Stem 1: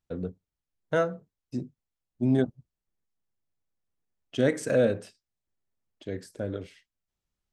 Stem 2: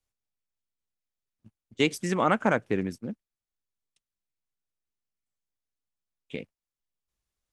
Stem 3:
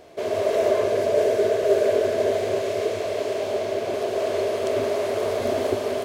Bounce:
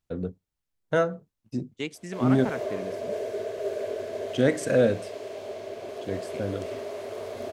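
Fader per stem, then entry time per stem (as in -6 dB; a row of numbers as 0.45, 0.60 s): +2.0, -9.0, -11.5 dB; 0.00, 0.00, 1.95 s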